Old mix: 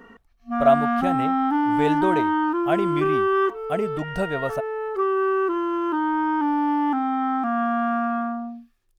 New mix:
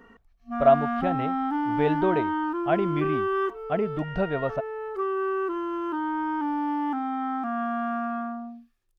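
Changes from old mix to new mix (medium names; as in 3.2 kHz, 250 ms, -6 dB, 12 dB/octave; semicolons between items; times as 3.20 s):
speech: add distance through air 250 m; background -5.5 dB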